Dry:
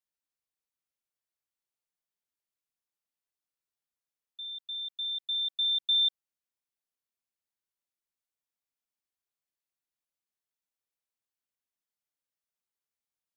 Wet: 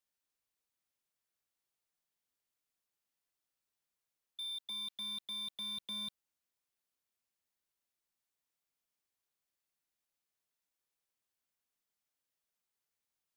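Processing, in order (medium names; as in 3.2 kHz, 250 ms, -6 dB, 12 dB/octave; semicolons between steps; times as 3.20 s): 4.62–5.19 s: dynamic bell 3.4 kHz, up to +5 dB, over -45 dBFS, Q 0.93; slew-rate limiter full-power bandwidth 26 Hz; trim +2.5 dB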